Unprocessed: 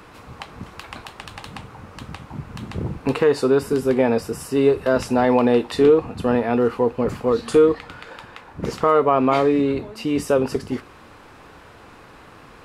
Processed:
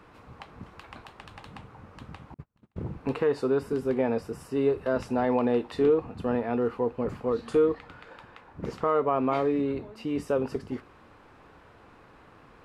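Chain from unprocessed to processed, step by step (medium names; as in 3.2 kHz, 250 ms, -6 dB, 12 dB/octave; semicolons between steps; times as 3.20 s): treble shelf 3.7 kHz -10 dB; 2.34–2.78 s: gate -28 dBFS, range -39 dB; trim -8 dB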